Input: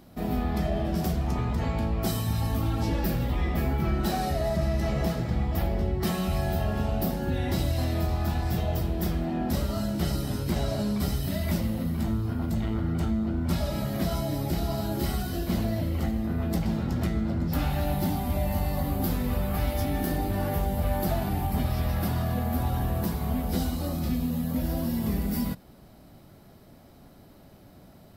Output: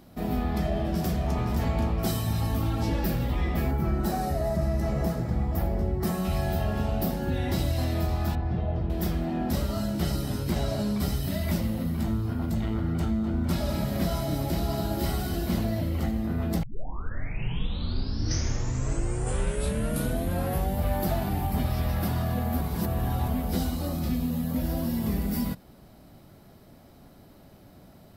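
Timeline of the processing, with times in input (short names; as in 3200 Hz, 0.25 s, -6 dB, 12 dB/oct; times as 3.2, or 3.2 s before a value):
0.53–1.4 echo throw 0.52 s, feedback 50%, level -7 dB
3.71–6.25 bell 3200 Hz -9 dB 1.4 oct
8.35–8.9 tape spacing loss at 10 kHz 38 dB
13.04–15.59 split-band echo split 620 Hz, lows 0.277 s, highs 0.199 s, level -9 dB
16.63 tape start 4.14 s
22.61–23.28 reverse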